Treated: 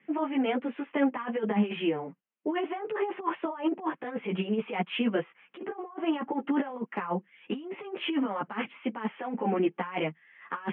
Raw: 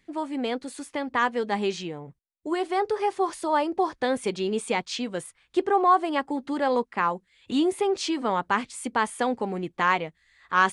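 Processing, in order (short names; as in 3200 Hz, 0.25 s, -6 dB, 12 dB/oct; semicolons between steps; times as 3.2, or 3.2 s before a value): steep low-pass 3100 Hz 96 dB/oct; negative-ratio compressor -29 dBFS, ratio -0.5; steep high-pass 150 Hz 48 dB/oct; ensemble effect; gain +3.5 dB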